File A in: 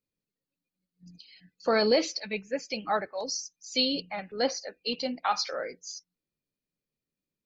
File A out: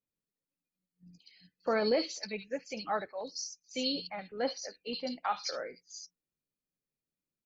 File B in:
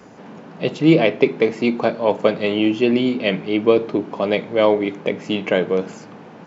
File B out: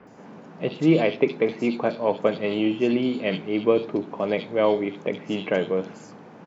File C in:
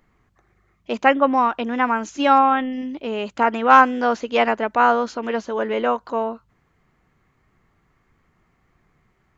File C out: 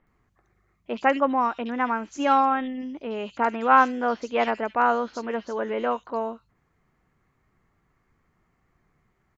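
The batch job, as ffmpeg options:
-filter_complex "[0:a]acrossover=split=3200[a][b];[b]adelay=70[c];[a][c]amix=inputs=2:normalize=0,volume=-5dB"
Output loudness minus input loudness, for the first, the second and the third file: -5.5, -5.0, -5.0 LU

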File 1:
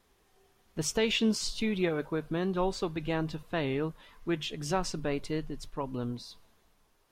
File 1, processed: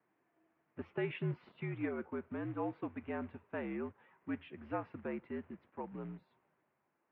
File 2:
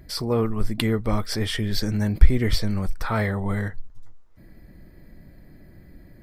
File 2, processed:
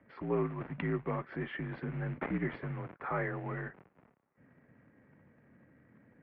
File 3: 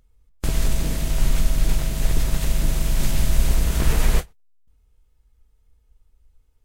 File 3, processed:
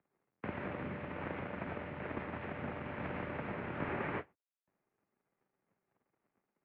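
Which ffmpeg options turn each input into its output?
-filter_complex "[0:a]acrossover=split=450[a][b];[a]acrusher=bits=4:mode=log:mix=0:aa=0.000001[c];[c][b]amix=inputs=2:normalize=0,highpass=f=210:t=q:w=0.5412,highpass=f=210:t=q:w=1.307,lowpass=f=2.4k:t=q:w=0.5176,lowpass=f=2.4k:t=q:w=0.7071,lowpass=f=2.4k:t=q:w=1.932,afreqshift=-67,volume=-8dB"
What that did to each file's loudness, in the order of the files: -10.0, -12.5, -17.0 LU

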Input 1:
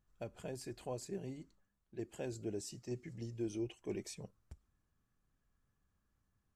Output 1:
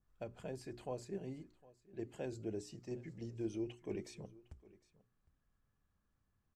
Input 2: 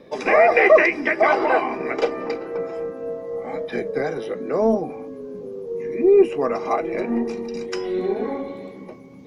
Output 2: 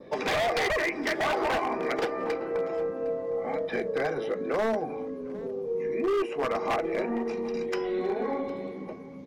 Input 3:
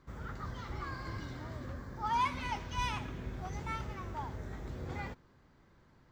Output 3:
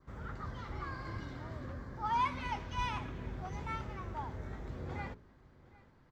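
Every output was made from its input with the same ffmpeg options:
-filter_complex "[0:a]aemphasis=mode=reproduction:type=cd,bandreject=f=60:t=h:w=6,bandreject=f=120:t=h:w=6,bandreject=f=180:t=h:w=6,bandreject=f=240:t=h:w=6,bandreject=f=300:t=h:w=6,bandreject=f=360:t=h:w=6,bandreject=f=420:t=h:w=6,adynamicequalizer=threshold=0.00708:dfrequency=2700:dqfactor=2.2:tfrequency=2700:tqfactor=2.2:attack=5:release=100:ratio=0.375:range=3.5:mode=cutabove:tftype=bell,acrossover=split=580|5000[a][b][c];[a]acompressor=threshold=-30dB:ratio=4[d];[b]acompressor=threshold=-23dB:ratio=4[e];[c]acompressor=threshold=-57dB:ratio=4[f];[d][e][f]amix=inputs=3:normalize=0,aeval=exprs='0.0944*(abs(mod(val(0)/0.0944+3,4)-2)-1)':c=same,aecho=1:1:758:0.0841" -ar 44100 -c:a libmp3lame -b:a 128k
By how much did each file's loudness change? -1.0, -8.5, -1.0 LU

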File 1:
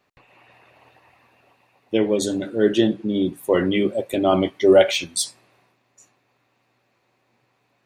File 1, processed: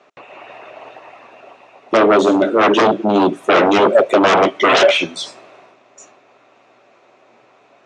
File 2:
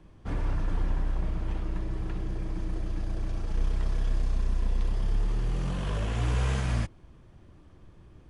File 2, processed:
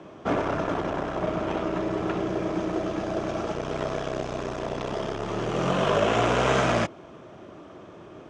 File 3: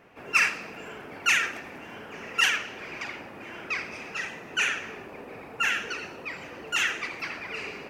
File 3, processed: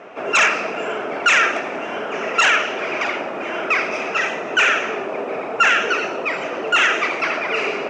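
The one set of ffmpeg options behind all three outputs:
-filter_complex "[0:a]acrossover=split=3100[a][b];[b]acompressor=threshold=-41dB:ratio=4:attack=1:release=60[c];[a][c]amix=inputs=2:normalize=0,aeval=exprs='0.794*sin(PI/2*7.94*val(0)/0.794)':c=same,highpass=240,equalizer=f=400:t=q:w=4:g=4,equalizer=f=640:t=q:w=4:g=9,equalizer=f=1.3k:t=q:w=4:g=5,equalizer=f=1.8k:t=q:w=4:g=-3,equalizer=f=4.5k:t=q:w=4:g=-7,lowpass=f=6.8k:w=0.5412,lowpass=f=6.8k:w=1.3066,volume=-8dB"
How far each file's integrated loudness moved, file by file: +7.0, +5.0, +9.0 LU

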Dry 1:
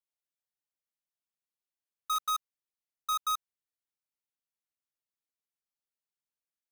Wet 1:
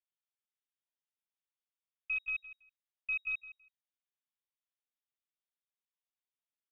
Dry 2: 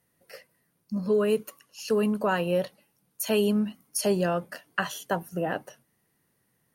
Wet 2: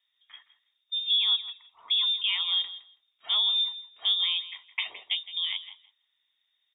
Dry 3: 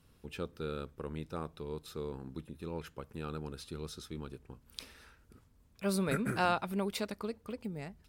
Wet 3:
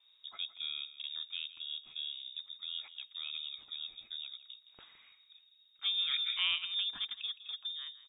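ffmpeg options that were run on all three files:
-filter_complex "[0:a]aeval=exprs='0.316*(cos(1*acos(clip(val(0)/0.316,-1,1)))-cos(1*PI/2))+0.00631*(cos(4*acos(clip(val(0)/0.316,-1,1)))-cos(4*PI/2))':c=same,lowpass=f=3.2k:t=q:w=0.5098,lowpass=f=3.2k:t=q:w=0.6013,lowpass=f=3.2k:t=q:w=0.9,lowpass=f=3.2k:t=q:w=2.563,afreqshift=-3800,aemphasis=mode=production:type=75fm,bandreject=f=530:w=12,asplit=2[a][b];[b]aecho=0:1:164|328:0.178|0.0267[c];[a][c]amix=inputs=2:normalize=0,volume=-6.5dB"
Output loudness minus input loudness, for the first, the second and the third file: -3.5, +2.0, +2.0 LU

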